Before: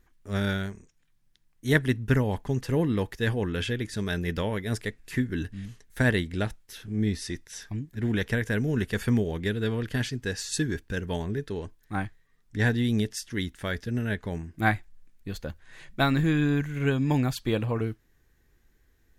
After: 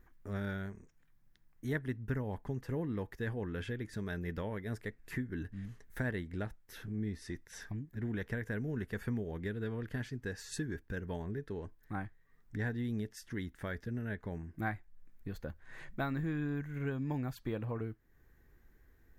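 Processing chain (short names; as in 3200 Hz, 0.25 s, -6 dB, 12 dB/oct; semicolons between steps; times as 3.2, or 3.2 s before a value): band shelf 5300 Hz -9 dB 2.4 oct; compressor 2:1, threshold -45 dBFS, peak gain reduction 15.5 dB; gain +1 dB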